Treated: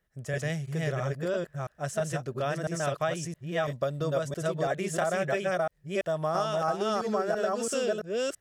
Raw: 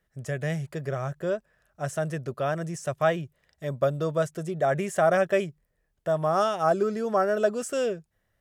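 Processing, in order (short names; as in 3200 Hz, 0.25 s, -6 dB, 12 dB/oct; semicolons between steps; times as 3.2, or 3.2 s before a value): reverse delay 0.334 s, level -0.5 dB; dynamic EQ 4400 Hz, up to +7 dB, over -45 dBFS, Q 0.7; compressor, threshold -22 dBFS, peak gain reduction 7.5 dB; gain -2.5 dB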